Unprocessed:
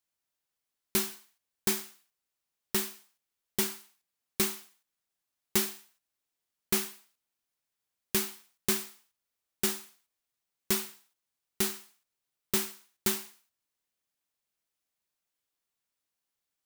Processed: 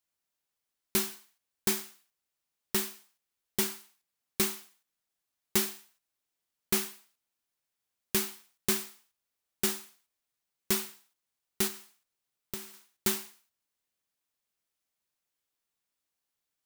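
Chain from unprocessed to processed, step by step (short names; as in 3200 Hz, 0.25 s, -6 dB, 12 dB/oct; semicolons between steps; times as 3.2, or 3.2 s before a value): 11.67–12.74 compressor 8:1, threshold -36 dBFS, peak gain reduction 13 dB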